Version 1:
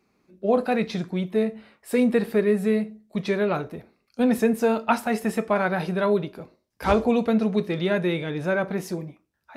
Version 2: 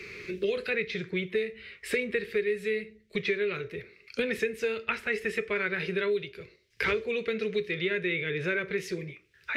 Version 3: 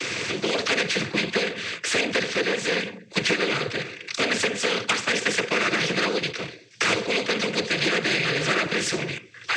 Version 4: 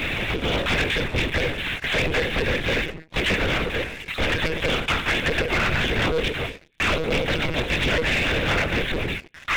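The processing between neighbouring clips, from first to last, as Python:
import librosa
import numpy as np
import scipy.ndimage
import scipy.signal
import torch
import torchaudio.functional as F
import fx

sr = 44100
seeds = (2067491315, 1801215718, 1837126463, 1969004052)

y1 = fx.curve_eq(x, sr, hz=(110.0, 270.0, 410.0, 760.0, 2100.0, 12000.0), db=(0, -19, 2, -25, 9, -13))
y1 = fx.band_squash(y1, sr, depth_pct=100)
y1 = y1 * 10.0 ** (-3.5 / 20.0)
y2 = fx.leveller(y1, sr, passes=1)
y2 = fx.noise_vocoder(y2, sr, seeds[0], bands=16)
y2 = fx.spectral_comp(y2, sr, ratio=2.0)
y2 = y2 * 10.0 ** (2.5 / 20.0)
y3 = fx.chorus_voices(y2, sr, voices=4, hz=0.58, base_ms=16, depth_ms=2.2, mix_pct=40)
y3 = fx.lpc_monotone(y3, sr, seeds[1], pitch_hz=160.0, order=10)
y3 = fx.leveller(y3, sr, passes=3)
y3 = y3 * 10.0 ** (-4.0 / 20.0)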